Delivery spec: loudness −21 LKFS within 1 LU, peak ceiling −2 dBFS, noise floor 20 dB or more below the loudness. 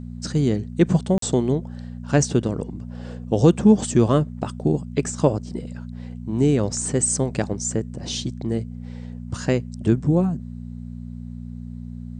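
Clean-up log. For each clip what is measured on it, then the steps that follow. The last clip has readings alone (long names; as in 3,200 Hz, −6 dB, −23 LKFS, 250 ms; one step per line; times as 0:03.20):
number of dropouts 1; longest dropout 43 ms; mains hum 60 Hz; hum harmonics up to 240 Hz; level of the hum −32 dBFS; integrated loudness −22.0 LKFS; sample peak −4.0 dBFS; target loudness −21.0 LKFS
→ repair the gap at 0:01.18, 43 ms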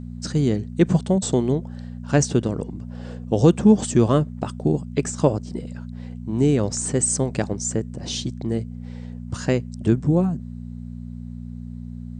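number of dropouts 0; mains hum 60 Hz; hum harmonics up to 240 Hz; level of the hum −32 dBFS
→ hum removal 60 Hz, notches 4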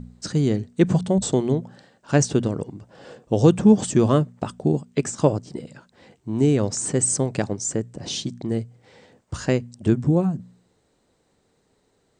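mains hum none found; integrated loudness −22.0 LKFS; sample peak −3.5 dBFS; target loudness −21.0 LKFS
→ level +1 dB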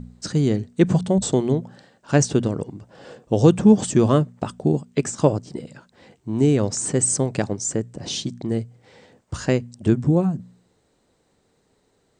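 integrated loudness −21.0 LKFS; sample peak −2.5 dBFS; background noise floor −66 dBFS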